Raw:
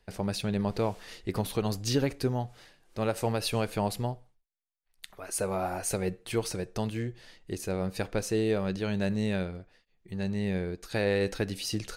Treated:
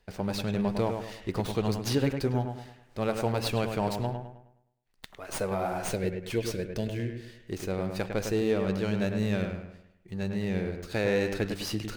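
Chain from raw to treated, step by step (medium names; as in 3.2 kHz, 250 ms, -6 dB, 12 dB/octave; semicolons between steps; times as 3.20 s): time-frequency box 5.85–7.47 s, 670–1400 Hz -14 dB; bucket-brigade echo 104 ms, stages 2048, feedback 40%, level -6 dB; sliding maximum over 3 samples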